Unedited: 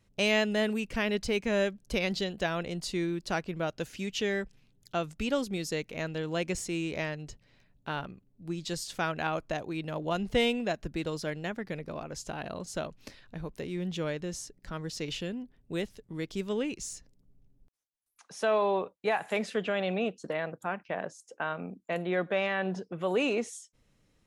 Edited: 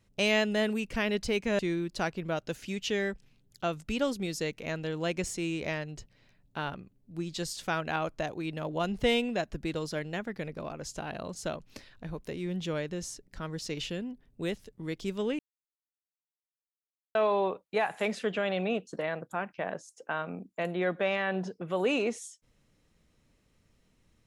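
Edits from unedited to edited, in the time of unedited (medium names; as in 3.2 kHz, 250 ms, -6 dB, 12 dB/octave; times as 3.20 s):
1.59–2.90 s: delete
16.70–18.46 s: mute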